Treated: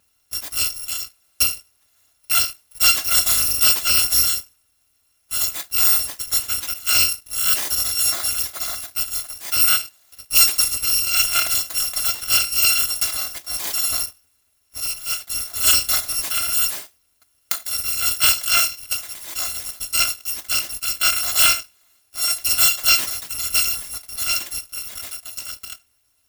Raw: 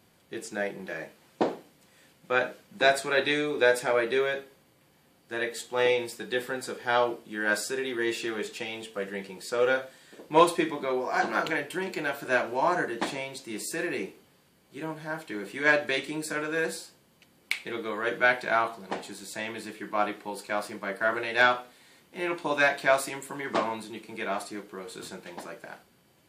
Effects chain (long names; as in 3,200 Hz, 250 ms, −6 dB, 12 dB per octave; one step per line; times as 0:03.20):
samples in bit-reversed order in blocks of 256 samples
leveller curve on the samples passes 2
level +2 dB